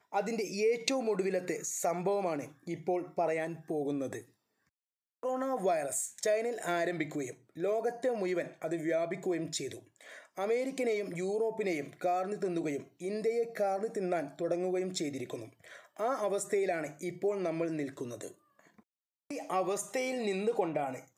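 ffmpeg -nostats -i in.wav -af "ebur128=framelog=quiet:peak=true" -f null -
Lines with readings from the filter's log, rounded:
Integrated loudness:
  I:         -33.9 LUFS
  Threshold: -44.3 LUFS
Loudness range:
  LRA:         3.2 LU
  Threshold: -54.7 LUFS
  LRA low:   -36.4 LUFS
  LRA high:  -33.2 LUFS
True peak:
  Peak:      -13.1 dBFS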